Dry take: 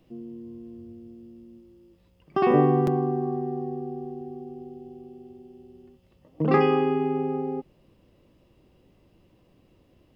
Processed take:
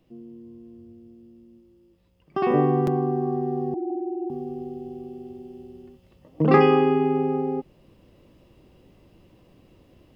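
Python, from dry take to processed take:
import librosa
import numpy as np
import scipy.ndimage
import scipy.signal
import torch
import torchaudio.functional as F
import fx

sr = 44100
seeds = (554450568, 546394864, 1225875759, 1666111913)

y = fx.sine_speech(x, sr, at=(3.74, 4.3))
y = fx.rider(y, sr, range_db=5, speed_s=2.0)
y = y * 10.0 ** (1.5 / 20.0)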